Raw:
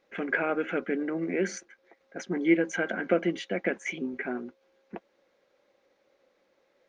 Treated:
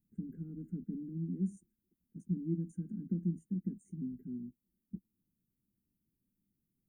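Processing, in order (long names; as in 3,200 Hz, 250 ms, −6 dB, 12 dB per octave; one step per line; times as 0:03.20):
inverse Chebyshev band-stop filter 570–4,200 Hz, stop band 60 dB
flat-topped bell 4,600 Hz −13.5 dB 1 octave
level +6 dB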